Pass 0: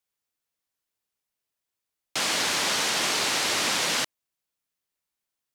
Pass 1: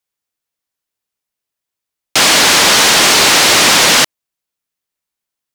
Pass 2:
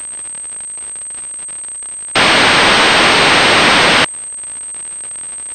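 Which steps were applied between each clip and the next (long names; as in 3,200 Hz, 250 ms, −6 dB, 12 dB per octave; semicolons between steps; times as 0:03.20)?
leveller curve on the samples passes 3; level +9 dB
surface crackle 210 per second −22 dBFS; upward compression, threshold −32 dBFS; switching amplifier with a slow clock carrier 8,300 Hz; level +2 dB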